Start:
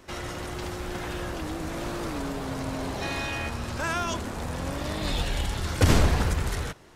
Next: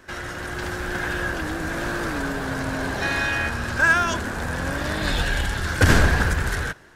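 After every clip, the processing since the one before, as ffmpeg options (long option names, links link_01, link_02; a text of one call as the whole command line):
ffmpeg -i in.wav -af "equalizer=frequency=1600:width_type=o:width=0.32:gain=14,dynaudnorm=framelen=350:gausssize=3:maxgain=4dB" out.wav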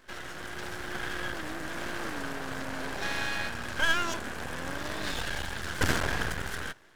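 ffmpeg -i in.wav -af "lowshelf=frequency=110:gain=-9.5,aeval=exprs='max(val(0),0)':channel_layout=same,volume=-4dB" out.wav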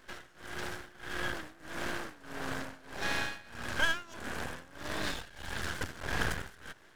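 ffmpeg -i in.wav -af "tremolo=f=1.6:d=0.92" out.wav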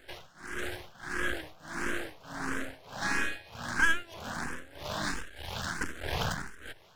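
ffmpeg -i in.wav -filter_complex "[0:a]asplit=2[link_01][link_02];[link_02]afreqshift=1.5[link_03];[link_01][link_03]amix=inputs=2:normalize=1,volume=5dB" out.wav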